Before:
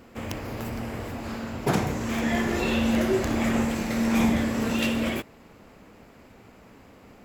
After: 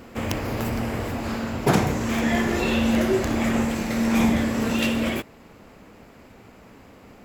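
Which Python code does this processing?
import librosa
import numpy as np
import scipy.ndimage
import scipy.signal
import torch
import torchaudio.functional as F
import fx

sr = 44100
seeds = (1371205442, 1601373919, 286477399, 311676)

y = fx.rider(x, sr, range_db=3, speed_s=2.0)
y = y * librosa.db_to_amplitude(3.5)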